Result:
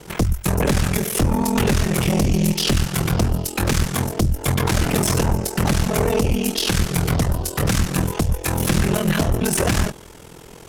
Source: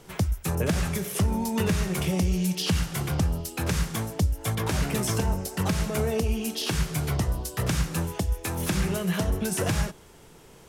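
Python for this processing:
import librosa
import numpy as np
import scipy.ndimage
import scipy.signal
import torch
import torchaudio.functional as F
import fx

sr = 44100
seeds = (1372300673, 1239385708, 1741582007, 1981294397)

y = x * np.sin(2.0 * np.pi * 21.0 * np.arange(len(x)) / sr)
y = fx.cheby_harmonics(y, sr, harmonics=(4, 5), levels_db=(-8, -8), full_scale_db=-14.0)
y = F.gain(torch.from_numpy(y), 3.0).numpy()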